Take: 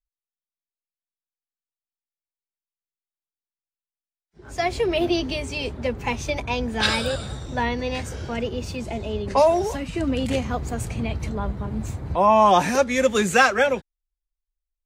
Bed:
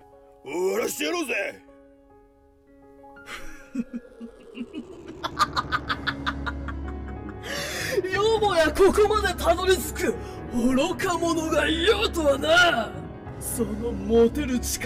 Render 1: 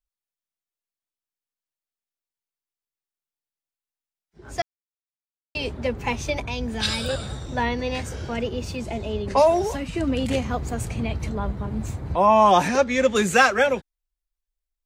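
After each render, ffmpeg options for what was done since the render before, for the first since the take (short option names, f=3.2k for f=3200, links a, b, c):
-filter_complex "[0:a]asettb=1/sr,asplit=3[a][b][c];[a]atrim=end=6.444[d];[b]atrim=start=6.44:end=7.09,asetpts=PTS-STARTPTS,afade=t=in:d=0.004:c=qsin,afade=t=out:st=0.646:d=0.004:c=qsin,acrossover=split=230|3000[e][f][g];[f]acompressor=threshold=-30dB:ratio=6:attack=3.2:release=140:knee=2.83:detection=peak[h];[e][h][g]amix=inputs=3:normalize=0[i];[c]atrim=start=7.086[j];[d][i]acrossfade=d=0.004:c1=hsin:c2=qsin[k];[k][j]acrossfade=d=0.004:c1=qsin:c2=hsin,asettb=1/sr,asplit=3[l][m][n];[l]atrim=end=12.684[o];[m]atrim=start=12.68:end=13.16,asetpts=PTS-STARTPTS,afade=t=in:d=0.004:c=qsin,afade=t=out:st=0.476:d=0.004:c=qsin,lowpass=6.1k[p];[n]atrim=start=13.156[q];[o][p]acrossfade=d=0.004:c1=hsin:c2=qsin[r];[r][q]acrossfade=d=0.004:c1=qsin:c2=hsin,asplit=3[s][t][u];[s]atrim=end=4.62,asetpts=PTS-STARTPTS,afade=t=out:st=4.616:d=0.004:c=hsin[v];[t]atrim=start=4.62:end=5.55,asetpts=PTS-STARTPTS,volume=0[w];[u]atrim=start=5.55,asetpts=PTS-STARTPTS,afade=t=in:d=0.004:c=hsin[x];[v][w][x]concat=n=3:v=0:a=1"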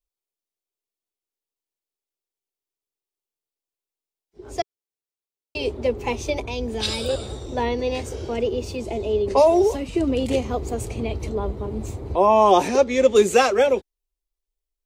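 -af "equalizer=f=160:t=o:w=0.67:g=-9,equalizer=f=400:t=o:w=0.67:g=10,equalizer=f=1.6k:t=o:w=0.67:g=-9"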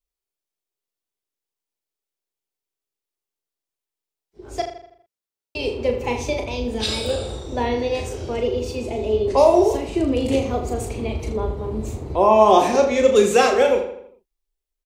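-filter_complex "[0:a]asplit=2[a][b];[b]adelay=37,volume=-6dB[c];[a][c]amix=inputs=2:normalize=0,asplit=2[d][e];[e]adelay=81,lowpass=f=4.6k:p=1,volume=-9dB,asplit=2[f][g];[g]adelay=81,lowpass=f=4.6k:p=1,volume=0.48,asplit=2[h][i];[i]adelay=81,lowpass=f=4.6k:p=1,volume=0.48,asplit=2[j][k];[k]adelay=81,lowpass=f=4.6k:p=1,volume=0.48,asplit=2[l][m];[m]adelay=81,lowpass=f=4.6k:p=1,volume=0.48[n];[f][h][j][l][n]amix=inputs=5:normalize=0[o];[d][o]amix=inputs=2:normalize=0"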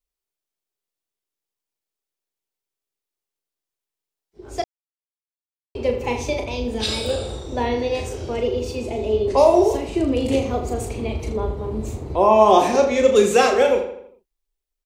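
-filter_complex "[0:a]asplit=3[a][b][c];[a]atrim=end=4.64,asetpts=PTS-STARTPTS,afade=t=out:st=4.636:d=0.004:c=hsin[d];[b]atrim=start=4.64:end=5.75,asetpts=PTS-STARTPTS,volume=0[e];[c]atrim=start=5.75,asetpts=PTS-STARTPTS,afade=t=in:d=0.004:c=hsin[f];[d][e][f]concat=n=3:v=0:a=1"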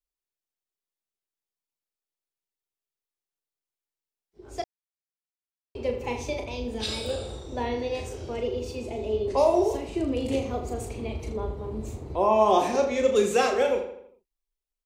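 -af "volume=-7dB"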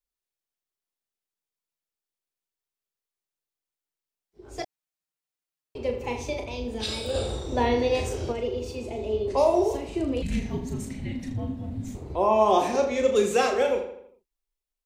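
-filter_complex "[0:a]asettb=1/sr,asplit=3[a][b][c];[a]atrim=end=4.584[d];[b]atrim=start=4.58:end=5.78,asetpts=PTS-STARTPTS,afade=t=in:d=0.004:c=qsin,afade=t=out:st=1.196:d=0.004:c=qsin,aecho=1:1:6.5:0.99,atrim=end_sample=52920[e];[c]atrim=start=5.776[f];[d][e]acrossfade=d=0.004:c1=hsin:c2=qsin[g];[g][f]acrossfade=d=0.004:c1=qsin:c2=hsin,asplit=3[h][i][j];[h]afade=t=out:st=7.14:d=0.02[k];[i]acontrast=58,afade=t=in:st=7.14:d=0.02,afade=t=out:st=8.31:d=0.02[l];[j]afade=t=in:st=8.31:d=0.02[m];[k][l][m]amix=inputs=3:normalize=0,asettb=1/sr,asplit=3[n][o][p];[n]atrim=end=10.224[q];[o]atrim=start=10.22:end=11.95,asetpts=PTS-STARTPTS,afade=t=in:d=0.004:c=qsin,afade=t=out:st=1.726:d=0.004:c=qsin,afreqshift=-320[r];[p]atrim=start=11.946[s];[q][r]acrossfade=d=0.004:c1=hsin:c2=qsin[t];[t][s]acrossfade=d=0.004:c1=qsin:c2=hsin"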